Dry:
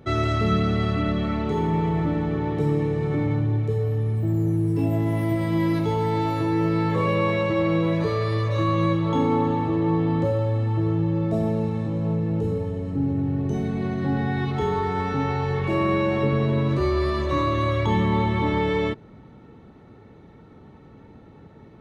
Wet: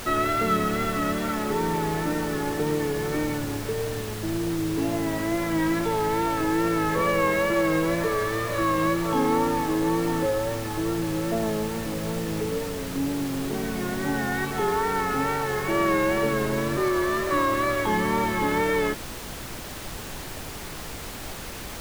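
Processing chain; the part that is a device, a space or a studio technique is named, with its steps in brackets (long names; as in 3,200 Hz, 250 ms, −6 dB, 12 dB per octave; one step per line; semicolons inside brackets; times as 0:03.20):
horn gramophone (band-pass filter 240–3,100 Hz; parametric band 1,600 Hz +9.5 dB 0.45 octaves; tape wow and flutter; pink noise bed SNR 10 dB)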